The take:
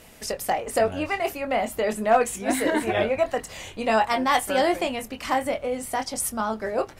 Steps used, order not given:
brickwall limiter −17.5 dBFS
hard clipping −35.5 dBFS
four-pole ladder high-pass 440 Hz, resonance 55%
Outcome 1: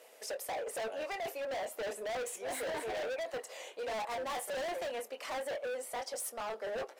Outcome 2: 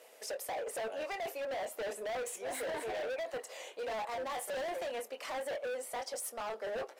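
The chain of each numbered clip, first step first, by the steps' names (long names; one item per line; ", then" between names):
four-pole ladder high-pass, then brickwall limiter, then hard clipping
brickwall limiter, then four-pole ladder high-pass, then hard clipping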